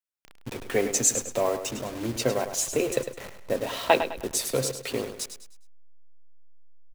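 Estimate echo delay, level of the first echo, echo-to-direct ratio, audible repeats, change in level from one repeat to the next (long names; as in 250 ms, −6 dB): 103 ms, −9.5 dB, −9.0 dB, 3, −9.0 dB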